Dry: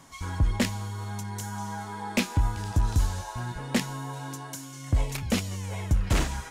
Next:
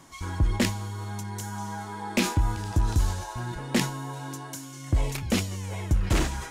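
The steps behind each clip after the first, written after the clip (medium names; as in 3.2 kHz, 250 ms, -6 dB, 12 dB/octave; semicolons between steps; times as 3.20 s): peaking EQ 340 Hz +7.5 dB 0.25 oct; decay stretcher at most 100 dB/s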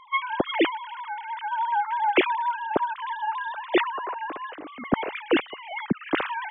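formants replaced by sine waves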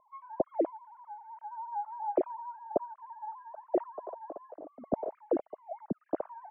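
four-pole ladder low-pass 700 Hz, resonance 70%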